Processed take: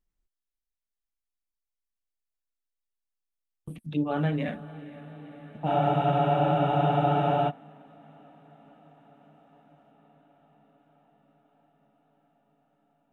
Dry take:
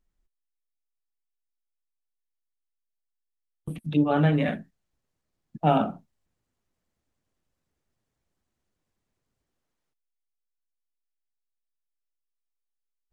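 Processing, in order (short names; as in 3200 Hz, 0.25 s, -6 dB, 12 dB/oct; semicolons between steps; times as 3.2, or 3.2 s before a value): on a send: diffused feedback echo 0.499 s, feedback 79%, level -16 dB; on the sum: spectral freeze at 5.68, 1.82 s; gain -5.5 dB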